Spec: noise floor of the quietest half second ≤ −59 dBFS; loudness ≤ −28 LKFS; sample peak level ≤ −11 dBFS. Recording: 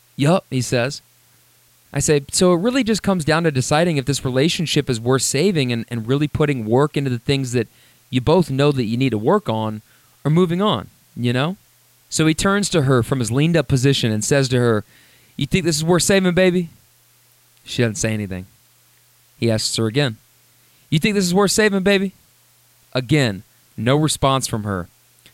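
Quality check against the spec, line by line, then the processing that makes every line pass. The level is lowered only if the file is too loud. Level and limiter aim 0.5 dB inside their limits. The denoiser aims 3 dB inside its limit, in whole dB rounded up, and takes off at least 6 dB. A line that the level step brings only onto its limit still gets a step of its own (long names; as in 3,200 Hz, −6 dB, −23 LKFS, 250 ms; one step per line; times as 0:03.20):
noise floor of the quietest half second −55 dBFS: out of spec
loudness −18.5 LKFS: out of spec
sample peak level −4.0 dBFS: out of spec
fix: level −10 dB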